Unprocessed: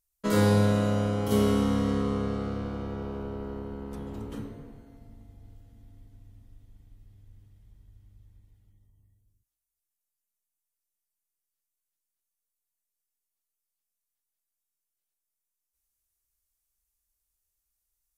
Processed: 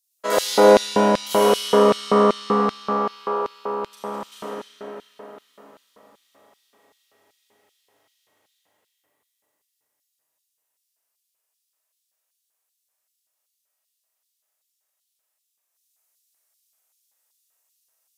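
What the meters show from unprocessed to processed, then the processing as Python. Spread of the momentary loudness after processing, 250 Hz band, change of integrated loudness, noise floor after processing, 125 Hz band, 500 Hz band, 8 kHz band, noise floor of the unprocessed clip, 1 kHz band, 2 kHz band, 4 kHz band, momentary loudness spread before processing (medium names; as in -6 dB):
20 LU, +2.0 dB, +8.5 dB, -78 dBFS, -7.0 dB, +12.5 dB, +11.5 dB, under -85 dBFS, +15.5 dB, +9.5 dB, +13.0 dB, 16 LU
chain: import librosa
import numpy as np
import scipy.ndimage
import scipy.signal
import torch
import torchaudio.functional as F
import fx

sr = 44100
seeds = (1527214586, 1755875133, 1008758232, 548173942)

y = scipy.signal.sosfilt(scipy.signal.butter(2, 170.0, 'highpass', fs=sr, output='sos'), x)
y = fx.room_flutter(y, sr, wall_m=6.6, rt60_s=0.46)
y = fx.rev_freeverb(y, sr, rt60_s=4.3, hf_ratio=0.7, predelay_ms=15, drr_db=-5.0)
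y = fx.filter_lfo_highpass(y, sr, shape='square', hz=2.6, low_hz=630.0, high_hz=3700.0, q=1.6)
y = y * 10.0 ** (5.5 / 20.0)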